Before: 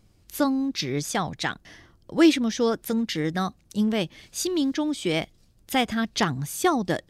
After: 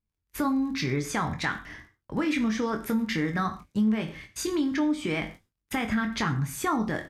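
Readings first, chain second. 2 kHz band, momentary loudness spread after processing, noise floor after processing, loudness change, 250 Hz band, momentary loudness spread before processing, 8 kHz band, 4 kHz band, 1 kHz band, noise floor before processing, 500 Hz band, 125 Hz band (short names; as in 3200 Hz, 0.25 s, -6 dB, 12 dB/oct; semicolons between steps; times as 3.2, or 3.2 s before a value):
-0.5 dB, 8 LU, -84 dBFS, -3.0 dB, -2.5 dB, 10 LU, -5.5 dB, -7.5 dB, -2.5 dB, -60 dBFS, -6.5 dB, +0.5 dB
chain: limiter -17.5 dBFS, peak gain reduction 11 dB; band shelf 1500 Hz +10 dB; crackle 35/s -35 dBFS; low shelf 450 Hz +10.5 dB; doubler 23 ms -8 dB; downsampling 32000 Hz; gate -38 dBFS, range -32 dB; non-linear reverb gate 0.16 s falling, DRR 7.5 dB; compressor 2.5:1, threshold -19 dBFS, peak gain reduction 8 dB; gain -5.5 dB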